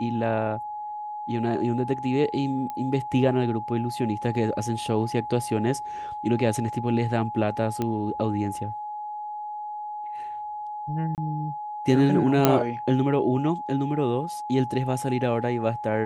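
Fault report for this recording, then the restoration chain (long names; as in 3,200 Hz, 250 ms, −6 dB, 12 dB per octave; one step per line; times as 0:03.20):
whistle 840 Hz −31 dBFS
0:02.70: click −20 dBFS
0:07.82: click −14 dBFS
0:11.15–0:11.18: drop-out 28 ms
0:12.45: click −3 dBFS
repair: click removal
notch filter 840 Hz, Q 30
repair the gap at 0:11.15, 28 ms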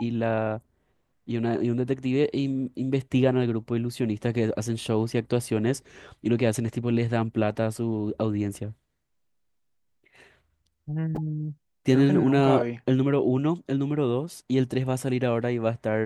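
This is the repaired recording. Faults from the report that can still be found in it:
0:07.82: click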